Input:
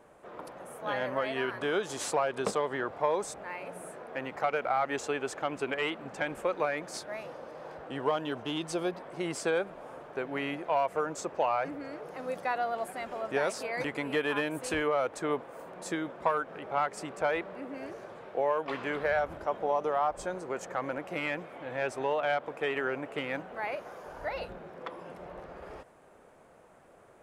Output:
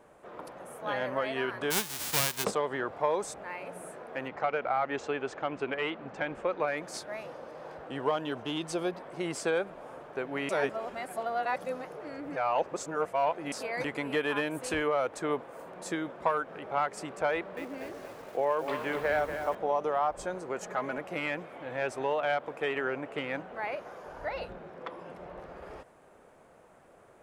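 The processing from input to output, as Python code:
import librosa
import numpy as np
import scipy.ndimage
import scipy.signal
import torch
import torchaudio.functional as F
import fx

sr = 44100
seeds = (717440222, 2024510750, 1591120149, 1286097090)

y = fx.envelope_flatten(x, sr, power=0.1, at=(1.7, 2.43), fade=0.02)
y = fx.air_absorb(y, sr, metres=120.0, at=(4.28, 6.68))
y = fx.echo_crushed(y, sr, ms=238, feedback_pct=55, bits=8, wet_db=-8, at=(17.33, 19.55))
y = fx.comb(y, sr, ms=4.8, depth=0.65, at=(20.61, 21.01))
y = fx.high_shelf(y, sr, hz=8800.0, db=-7.0, at=(22.73, 25.4))
y = fx.edit(y, sr, fx.reverse_span(start_s=10.49, length_s=3.03), tone=tone)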